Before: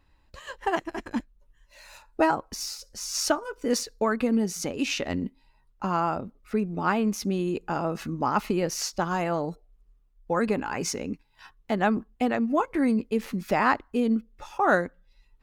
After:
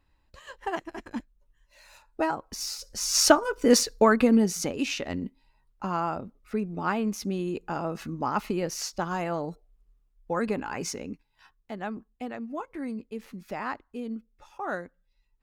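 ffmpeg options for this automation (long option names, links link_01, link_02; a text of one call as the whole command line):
ffmpeg -i in.wav -af "volume=6.5dB,afade=type=in:start_time=2.41:duration=0.79:silence=0.266073,afade=type=out:start_time=3.93:duration=1.03:silence=0.334965,afade=type=out:start_time=10.78:duration=0.93:silence=0.398107" out.wav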